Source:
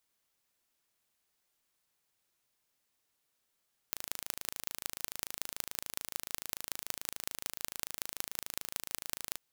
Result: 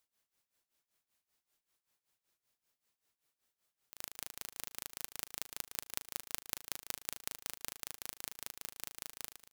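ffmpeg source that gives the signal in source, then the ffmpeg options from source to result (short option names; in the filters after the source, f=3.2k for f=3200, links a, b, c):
-f lavfi -i "aevalsrc='0.501*eq(mod(n,1639),0)*(0.5+0.5*eq(mod(n,8195),0))':d=5.43:s=44100"
-af "tremolo=f=5.2:d=0.9,aecho=1:1:114|230:0.126|0.141"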